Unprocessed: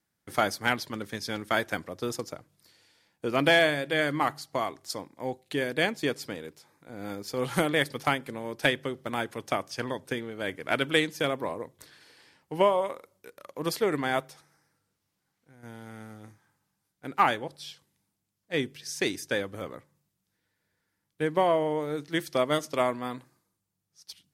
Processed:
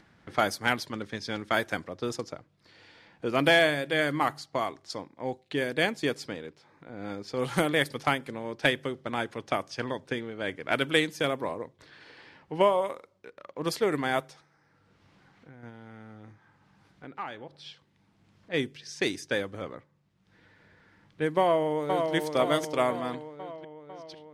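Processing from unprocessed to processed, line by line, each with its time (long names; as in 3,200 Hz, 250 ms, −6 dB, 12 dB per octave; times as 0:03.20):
0:15.69–0:17.66: downward compressor 2 to 1, threshold −44 dBFS
0:21.39–0:22.14: delay throw 500 ms, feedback 60%, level −4.5 dB
whole clip: low-pass that shuts in the quiet parts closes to 2,900 Hz, open at −23 dBFS; upward compression, threshold −42 dBFS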